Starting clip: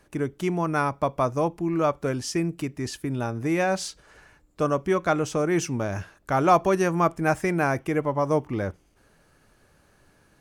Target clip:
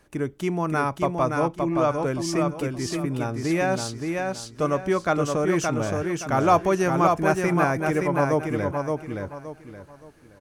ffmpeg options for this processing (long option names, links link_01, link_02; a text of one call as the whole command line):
ffmpeg -i in.wav -filter_complex "[0:a]asettb=1/sr,asplit=3[link_01][link_02][link_03];[link_01]atrim=end=1.074[link_04];[link_02]atrim=start=1.07:end=2.06,asetpts=PTS-STARTPTS,afade=type=in:duration=0.004:curve=qsin,afade=type=out:start_time=0.986:duration=0.004:curve=qsin,lowpass=frequency=9800:width=0.5412,lowpass=frequency=9800:width=1.3066[link_05];[link_03]atrim=start=2.056[link_06];[link_04][link_05]acrossfade=duration=0.004:curve1=hsin:curve2=qsin[link_07];[link_07][link_06]acrossfade=duration=0.004:curve1=qsin:curve2=hsin,aecho=1:1:571|1142|1713|2284:0.631|0.189|0.0568|0.017" out.wav